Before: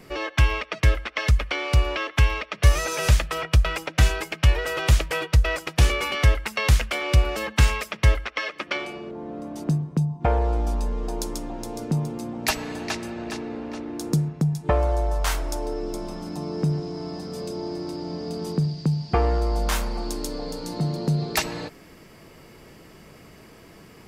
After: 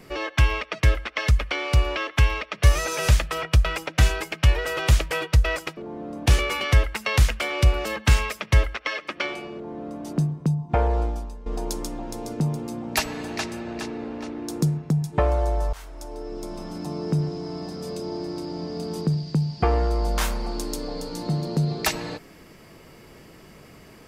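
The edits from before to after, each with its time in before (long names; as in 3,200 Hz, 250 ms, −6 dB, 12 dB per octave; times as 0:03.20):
0:09.06–0:09.55: duplicate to 0:05.77
0:10.53–0:10.97: fade out quadratic, to −15 dB
0:15.24–0:16.28: fade in, from −22 dB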